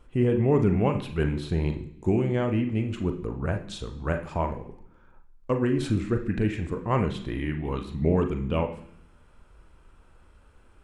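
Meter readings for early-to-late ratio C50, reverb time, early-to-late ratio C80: 10.0 dB, 0.65 s, 13.5 dB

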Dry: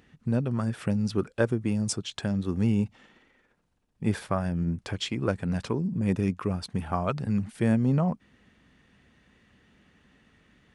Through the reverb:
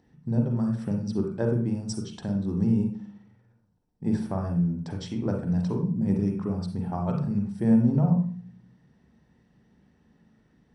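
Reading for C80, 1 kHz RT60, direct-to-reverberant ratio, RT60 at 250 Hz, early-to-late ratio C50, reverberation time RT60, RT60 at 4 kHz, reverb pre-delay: 10.0 dB, 0.40 s, 3.0 dB, 0.75 s, 6.0 dB, 0.45 s, 0.40 s, 39 ms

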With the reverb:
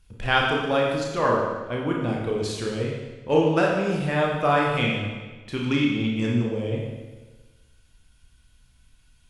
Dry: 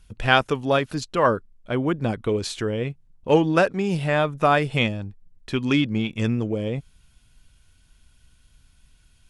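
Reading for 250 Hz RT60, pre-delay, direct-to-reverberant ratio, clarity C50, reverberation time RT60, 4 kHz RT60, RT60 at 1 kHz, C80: 1.3 s, 27 ms, -2.5 dB, 1.5 dB, 1.3 s, 1.2 s, 1.3 s, 3.5 dB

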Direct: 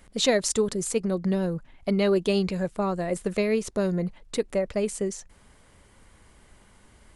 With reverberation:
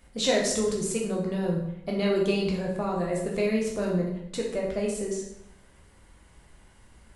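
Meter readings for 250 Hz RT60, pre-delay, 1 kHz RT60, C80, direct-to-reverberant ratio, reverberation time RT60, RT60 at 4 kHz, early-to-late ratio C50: 1.0 s, 8 ms, 0.75 s, 7.0 dB, -2.5 dB, 0.80 s, 0.65 s, 3.5 dB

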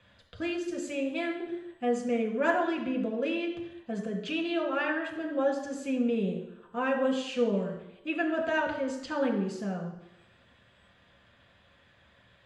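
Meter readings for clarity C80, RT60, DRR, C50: 9.0 dB, 0.85 s, 0.5 dB, 6.5 dB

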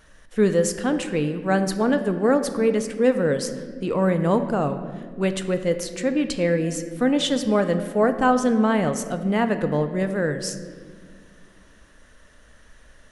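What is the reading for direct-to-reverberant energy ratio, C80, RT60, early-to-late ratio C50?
8.0 dB, 11.5 dB, no single decay rate, 10.0 dB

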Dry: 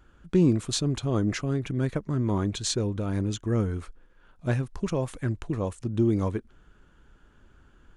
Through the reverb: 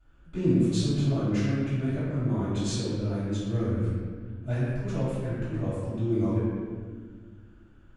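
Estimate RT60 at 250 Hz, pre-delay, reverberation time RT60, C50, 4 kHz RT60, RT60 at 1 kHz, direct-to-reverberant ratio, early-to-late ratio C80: 2.7 s, 3 ms, 1.6 s, -3.0 dB, 1.1 s, 1.4 s, -16.0 dB, -1.0 dB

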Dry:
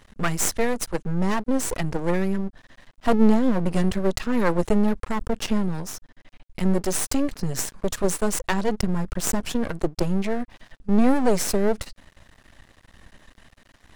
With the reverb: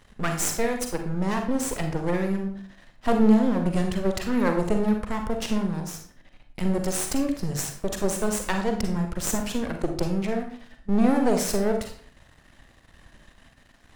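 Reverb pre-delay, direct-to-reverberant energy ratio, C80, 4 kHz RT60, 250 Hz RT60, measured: 37 ms, 4.0 dB, 11.0 dB, 0.40 s, 0.55 s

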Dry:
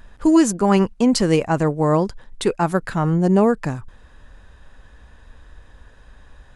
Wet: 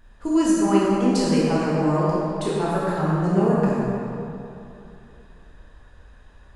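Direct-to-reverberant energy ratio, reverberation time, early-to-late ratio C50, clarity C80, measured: -7.0 dB, 2.8 s, -4.0 dB, -2.0 dB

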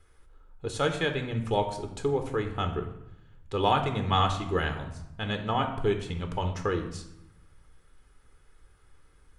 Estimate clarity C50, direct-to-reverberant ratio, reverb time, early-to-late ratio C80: 9.0 dB, 5.0 dB, 0.85 s, 11.0 dB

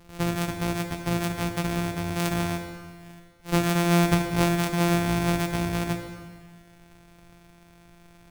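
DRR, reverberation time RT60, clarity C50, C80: 5.5 dB, 1.7 s, 7.5 dB, 8.5 dB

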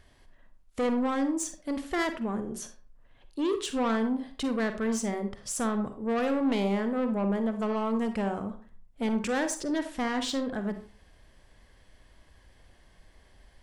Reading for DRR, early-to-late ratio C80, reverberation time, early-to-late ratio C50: 8.0 dB, 15.0 dB, 0.45 s, 9.5 dB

